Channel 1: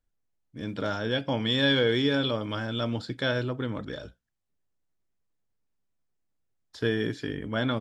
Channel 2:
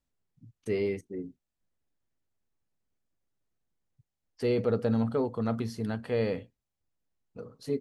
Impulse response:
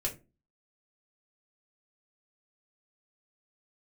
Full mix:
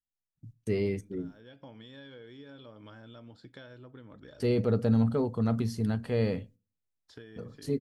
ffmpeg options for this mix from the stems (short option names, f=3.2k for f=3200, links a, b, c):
-filter_complex "[0:a]acompressor=threshold=-33dB:ratio=16,adynamicequalizer=threshold=0.00282:dfrequency=2000:dqfactor=0.7:tfrequency=2000:tqfactor=0.7:attack=5:release=100:ratio=0.375:range=2.5:mode=cutabove:tftype=highshelf,adelay=350,volume=-11.5dB[a];[1:a]agate=range=-23dB:threshold=-54dB:ratio=16:detection=peak,bass=f=250:g=8,treble=f=4k:g=5,volume=-2.5dB,asplit=3[b][c][d];[c]volume=-22.5dB[e];[d]apad=whole_len=359484[f];[a][f]sidechaincompress=threshold=-46dB:ratio=5:attack=35:release=361[g];[2:a]atrim=start_sample=2205[h];[e][h]afir=irnorm=-1:irlink=0[i];[g][b][i]amix=inputs=3:normalize=0"